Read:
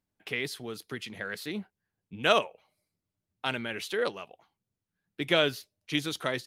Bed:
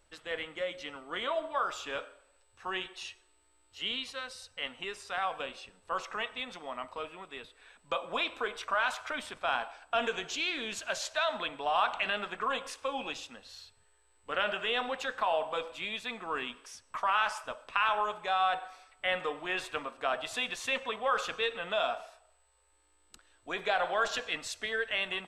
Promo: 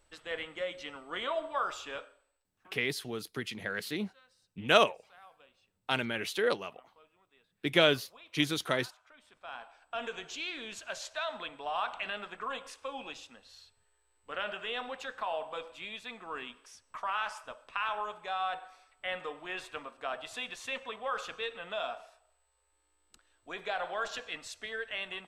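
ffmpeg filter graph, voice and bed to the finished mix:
-filter_complex "[0:a]adelay=2450,volume=1.06[s0];[1:a]volume=6.68,afade=t=out:st=1.7:d=0.79:silence=0.0794328,afade=t=in:st=9.2:d=1.02:silence=0.133352[s1];[s0][s1]amix=inputs=2:normalize=0"

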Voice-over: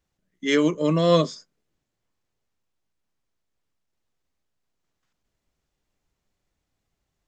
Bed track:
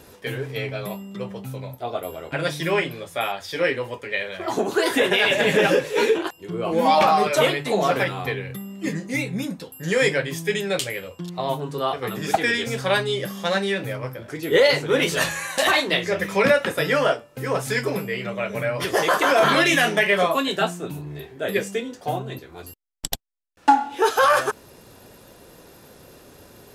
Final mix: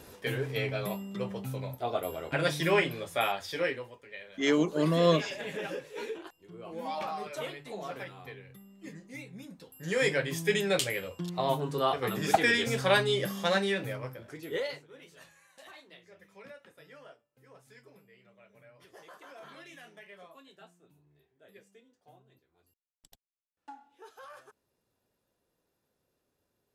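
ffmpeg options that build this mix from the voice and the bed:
-filter_complex "[0:a]adelay=3950,volume=0.531[s0];[1:a]volume=3.98,afade=t=out:st=3.3:d=0.64:silence=0.16788,afade=t=in:st=9.48:d=1.04:silence=0.16788,afade=t=out:st=13.33:d=1.54:silence=0.0354813[s1];[s0][s1]amix=inputs=2:normalize=0"

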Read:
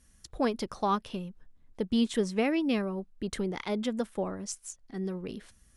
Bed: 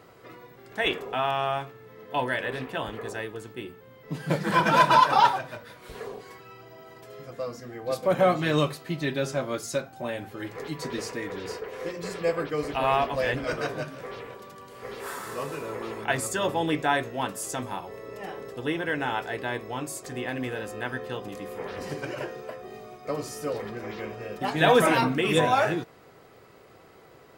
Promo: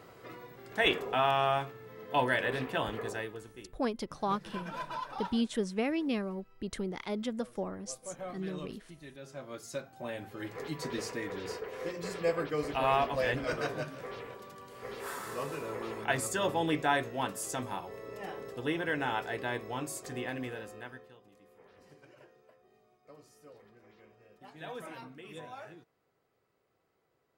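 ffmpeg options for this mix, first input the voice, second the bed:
-filter_complex "[0:a]adelay=3400,volume=0.631[s0];[1:a]volume=6.31,afade=t=out:st=2.95:d=0.81:silence=0.1,afade=t=in:st=9.19:d=1.38:silence=0.141254,afade=t=out:st=20.11:d=1.03:silence=0.1[s1];[s0][s1]amix=inputs=2:normalize=0"

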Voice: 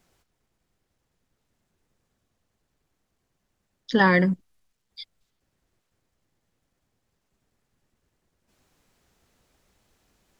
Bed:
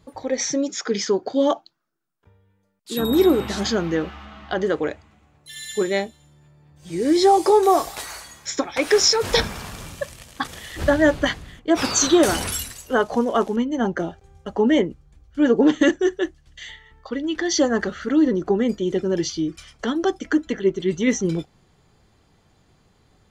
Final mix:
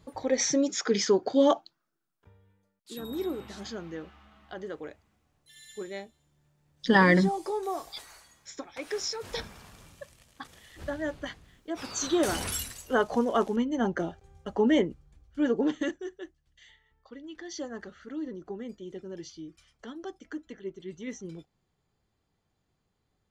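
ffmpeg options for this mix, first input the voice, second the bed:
-filter_complex "[0:a]adelay=2950,volume=0.841[s0];[1:a]volume=2.66,afade=t=out:st=2.48:d=0.52:silence=0.199526,afade=t=in:st=11.88:d=0.7:silence=0.281838,afade=t=out:st=15.03:d=1.02:silence=0.223872[s1];[s0][s1]amix=inputs=2:normalize=0"

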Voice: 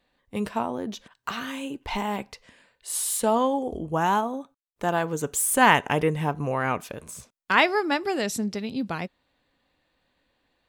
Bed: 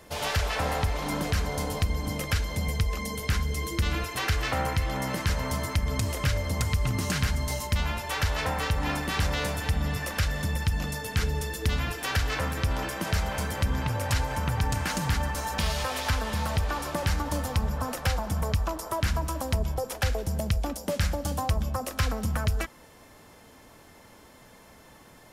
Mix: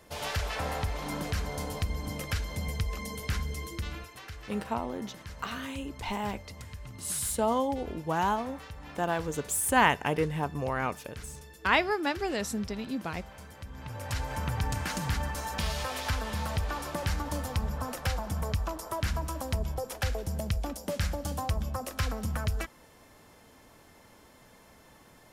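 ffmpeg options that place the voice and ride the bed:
-filter_complex "[0:a]adelay=4150,volume=0.562[s0];[1:a]volume=2.66,afade=t=out:st=3.41:d=0.81:silence=0.237137,afade=t=in:st=13.73:d=0.67:silence=0.211349[s1];[s0][s1]amix=inputs=2:normalize=0"

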